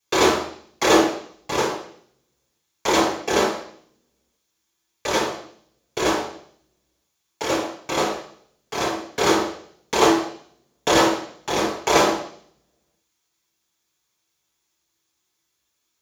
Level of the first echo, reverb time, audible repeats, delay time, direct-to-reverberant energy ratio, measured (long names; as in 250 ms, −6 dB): no echo audible, 0.55 s, no echo audible, no echo audible, −7.5 dB